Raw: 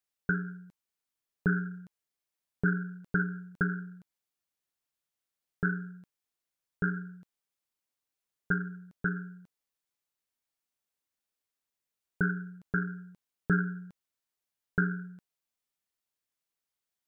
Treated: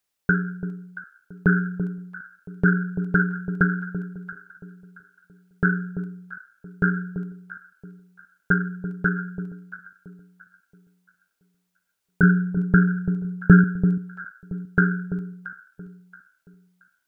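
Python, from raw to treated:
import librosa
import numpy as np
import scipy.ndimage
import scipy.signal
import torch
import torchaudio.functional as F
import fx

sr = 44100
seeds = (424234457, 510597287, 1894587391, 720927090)

y = fx.low_shelf(x, sr, hz=210.0, db=11.5, at=(12.23, 13.64))
y = fx.echo_alternate(y, sr, ms=338, hz=930.0, feedback_pct=53, wet_db=-9.0)
y = y * librosa.db_to_amplitude(9.0)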